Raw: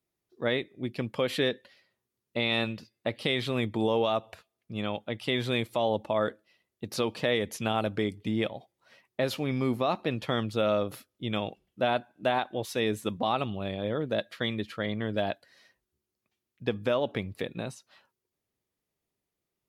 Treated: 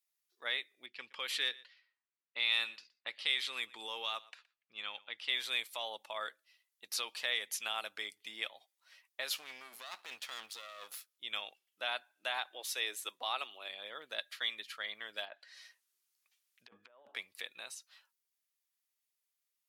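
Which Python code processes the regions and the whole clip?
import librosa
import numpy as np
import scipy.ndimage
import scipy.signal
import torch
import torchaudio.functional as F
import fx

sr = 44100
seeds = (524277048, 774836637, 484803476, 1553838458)

y = fx.chain(x, sr, fx.env_lowpass(base_hz=2000.0, full_db=-23.5),
    fx.peak_eq(hz=640.0, db=-7.5, octaves=0.36),
    fx.echo_single(ms=119, db=-21.5), at=(0.86, 5.3))
y = fx.chain(y, sr, fx.halfwave_gain(db=-12.0),
    fx.over_compress(threshold_db=-34.0, ratio=-1.0), at=(9.36, 11.09))
y = fx.chain(y, sr, fx.highpass(hz=290.0, slope=24),
    fx.low_shelf(hz=420.0, db=6.0), at=(12.38, 13.69))
y = fx.chain(y, sr, fx.env_lowpass_down(base_hz=960.0, full_db=-27.0),
    fx.over_compress(threshold_db=-35.0, ratio=-0.5), at=(15.25, 17.15))
y = scipy.signal.sosfilt(scipy.signal.butter(2, 1300.0, 'highpass', fs=sr, output='sos'), y)
y = fx.high_shelf(y, sr, hz=3600.0, db=8.0)
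y = y * 10.0 ** (-4.5 / 20.0)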